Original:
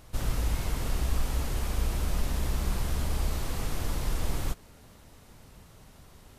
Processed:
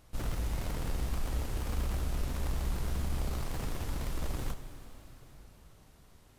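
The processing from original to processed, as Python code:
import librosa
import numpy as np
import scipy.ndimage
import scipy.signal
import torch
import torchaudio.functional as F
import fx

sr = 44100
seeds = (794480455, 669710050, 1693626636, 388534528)

p1 = fx.schmitt(x, sr, flips_db=-36.5)
p2 = x + F.gain(torch.from_numpy(p1), -4.5).numpy()
p3 = fx.rev_plate(p2, sr, seeds[0], rt60_s=4.3, hf_ratio=1.0, predelay_ms=0, drr_db=9.0)
y = F.gain(torch.from_numpy(p3), -8.0).numpy()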